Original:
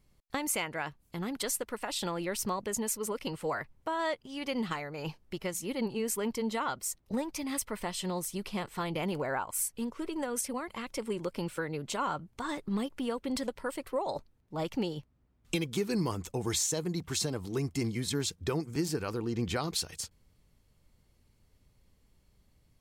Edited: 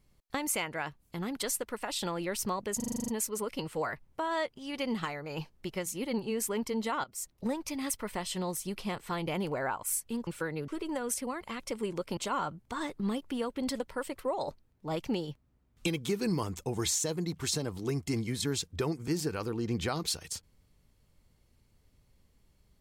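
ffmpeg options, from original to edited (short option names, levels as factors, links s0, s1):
-filter_complex "[0:a]asplit=13[s0][s1][s2][s3][s4][s5][s6][s7][s8][s9][s10][s11][s12];[s0]atrim=end=2.802[s13];[s1]atrim=start=2.758:end=2.802[s14];[s2]atrim=start=2.758:end=2.802[s15];[s3]atrim=start=2.758:end=2.802[s16];[s4]atrim=start=2.758:end=2.802[s17];[s5]atrim=start=2.758:end=2.802[s18];[s6]atrim=start=2.758:end=2.802[s19];[s7]atrim=start=2.758:end=2.802[s20];[s8]atrim=start=2.758:end=6.72,asetpts=PTS-STARTPTS,afade=t=out:st=3.958:d=0.004:c=hsin:silence=0.16788[s21];[s9]atrim=start=6.72:end=9.952,asetpts=PTS-STARTPTS,afade=t=in:d=0.26:silence=0.16788[s22];[s10]atrim=start=11.438:end=11.852[s23];[s11]atrim=start=9.948:end=11.442[s24];[s12]atrim=start=11.848[s25];[s13][s14]acrossfade=d=0.004:c1=hsin:c2=hsin[s26];[s26][s15]acrossfade=d=0.004:c1=hsin:c2=hsin[s27];[s27][s16]acrossfade=d=0.004:c1=hsin:c2=hsin[s28];[s28][s17]acrossfade=d=0.004:c1=hsin:c2=hsin[s29];[s29][s18]acrossfade=d=0.004:c1=hsin:c2=hsin[s30];[s30][s19]acrossfade=d=0.004:c1=hsin:c2=hsin[s31];[s31][s20]acrossfade=d=0.004:c1=hsin:c2=hsin[s32];[s21][s22]concat=n=2:v=0:a=1[s33];[s32][s33]acrossfade=d=0.004:c1=hsin:c2=hsin[s34];[s34][s23]acrossfade=d=0.004:c1=hsin:c2=hsin[s35];[s35][s24]acrossfade=d=0.004:c1=hsin:c2=hsin[s36];[s36][s25]acrossfade=d=0.004:c1=hsin:c2=hsin"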